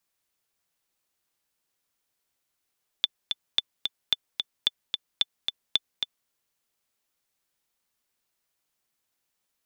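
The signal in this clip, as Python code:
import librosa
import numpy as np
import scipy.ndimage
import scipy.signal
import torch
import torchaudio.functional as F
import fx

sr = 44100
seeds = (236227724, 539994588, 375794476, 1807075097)

y = fx.click_track(sr, bpm=221, beats=2, bars=6, hz=3510.0, accent_db=5.5, level_db=-8.0)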